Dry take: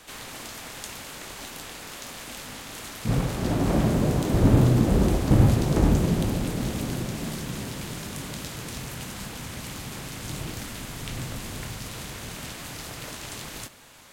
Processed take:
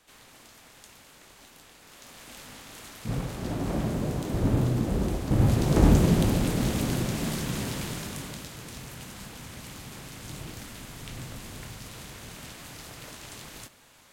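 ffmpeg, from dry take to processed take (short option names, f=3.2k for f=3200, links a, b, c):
-af "volume=2dB,afade=t=in:st=1.8:d=0.6:silence=0.446684,afade=t=in:st=5.31:d=0.58:silence=0.375837,afade=t=out:st=7.73:d=0.75:silence=0.398107"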